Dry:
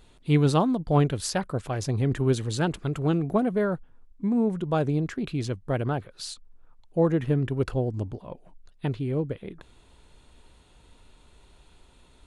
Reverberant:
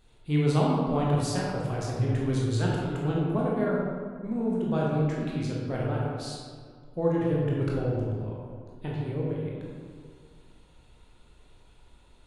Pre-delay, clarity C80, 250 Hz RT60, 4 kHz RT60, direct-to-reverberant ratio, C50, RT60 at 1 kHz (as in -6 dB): 17 ms, 0.5 dB, 2.2 s, 1.1 s, -5.0 dB, -1.0 dB, 1.9 s